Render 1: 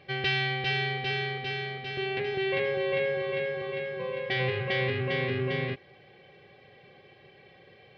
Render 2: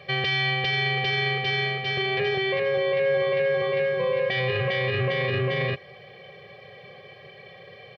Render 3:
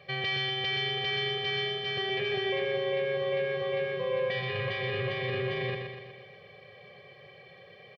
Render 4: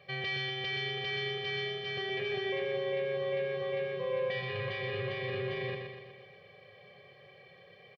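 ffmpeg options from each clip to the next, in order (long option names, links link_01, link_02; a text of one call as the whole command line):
ffmpeg -i in.wav -af "highpass=110,aecho=1:1:1.7:0.98,alimiter=limit=-23dB:level=0:latency=1:release=15,volume=6dB" out.wav
ffmpeg -i in.wav -af "aecho=1:1:122|244|366|488|610|732|854:0.562|0.309|0.17|0.0936|0.0515|0.0283|0.0156,volume=-7.5dB" out.wav
ffmpeg -i in.wav -filter_complex "[0:a]asplit=2[link_01][link_02];[link_02]adelay=29,volume=-12dB[link_03];[link_01][link_03]amix=inputs=2:normalize=0,volume=-4.5dB" out.wav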